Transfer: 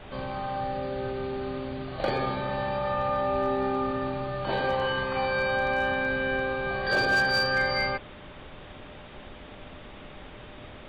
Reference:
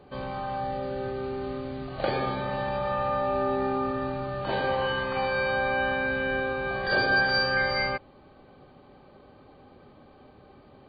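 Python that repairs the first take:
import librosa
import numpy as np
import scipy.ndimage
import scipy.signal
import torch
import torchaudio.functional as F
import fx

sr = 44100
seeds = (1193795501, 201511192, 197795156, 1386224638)

y = fx.fix_declip(x, sr, threshold_db=-18.0)
y = fx.notch(y, sr, hz=600.0, q=30.0)
y = fx.noise_reduce(y, sr, print_start_s=8.64, print_end_s=9.14, reduce_db=9.0)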